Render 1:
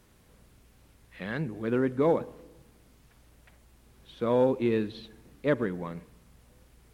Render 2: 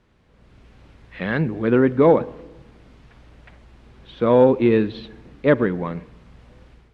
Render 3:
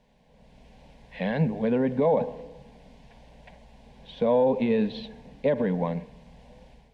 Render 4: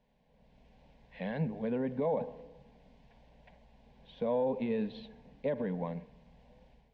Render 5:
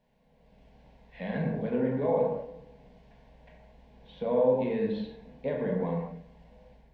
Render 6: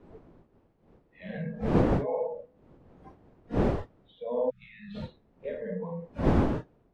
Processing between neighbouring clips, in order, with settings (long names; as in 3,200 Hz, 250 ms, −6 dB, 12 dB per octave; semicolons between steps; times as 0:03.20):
low-pass filter 3,500 Hz 12 dB per octave; automatic gain control gain up to 11 dB
parametric band 950 Hz +7 dB 1.2 octaves; brickwall limiter −11 dBFS, peak gain reduction 10.5 dB; phaser with its sweep stopped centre 340 Hz, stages 6
high-frequency loss of the air 86 metres; level −9 dB
convolution reverb, pre-delay 8 ms, DRR −2.5 dB
wind on the microphone 370 Hz −28 dBFS; noise reduction from a noise print of the clip's start 17 dB; time-frequency box erased 0:04.50–0:04.95, 200–1,200 Hz; level −4 dB